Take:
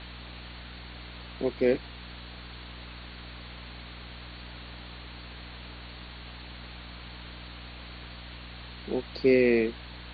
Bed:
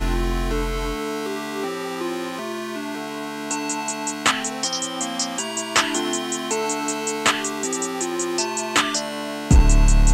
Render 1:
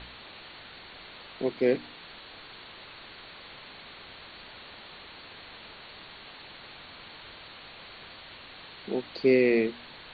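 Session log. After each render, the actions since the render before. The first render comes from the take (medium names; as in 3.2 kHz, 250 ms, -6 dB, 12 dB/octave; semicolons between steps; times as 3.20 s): de-hum 60 Hz, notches 5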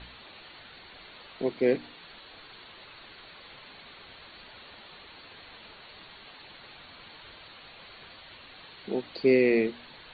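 noise reduction 6 dB, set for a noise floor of -48 dBFS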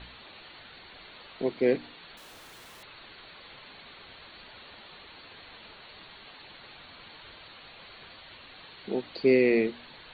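2.17–2.83 s: Schmitt trigger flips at -58 dBFS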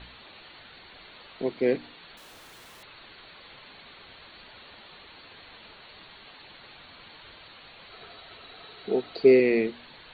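7.92–9.40 s: small resonant body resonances 430/690/1300/3900 Hz, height 10 dB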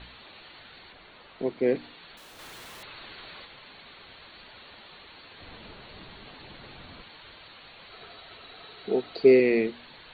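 0.92–1.76 s: treble shelf 2.9 kHz -8 dB; 2.39–3.45 s: gain +4.5 dB; 5.40–7.02 s: bass shelf 470 Hz +11.5 dB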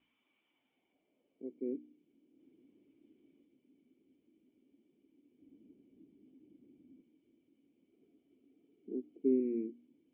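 band-pass sweep 1.1 kHz -> 330 Hz, 0.40–1.92 s; cascade formant filter i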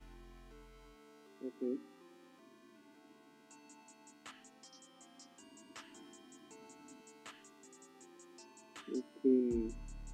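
add bed -34.5 dB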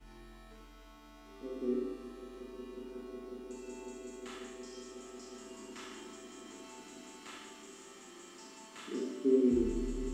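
echo with a slow build-up 182 ms, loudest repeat 8, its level -15 dB; Schroeder reverb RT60 1 s, combs from 29 ms, DRR -3.5 dB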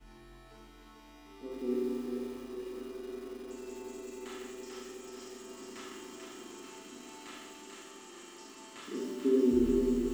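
two-band feedback delay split 320 Hz, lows 151 ms, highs 441 ms, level -4 dB; bit-crushed delay 86 ms, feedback 55%, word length 8-bit, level -9.5 dB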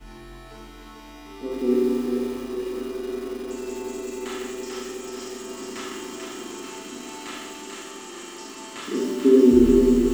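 trim +12 dB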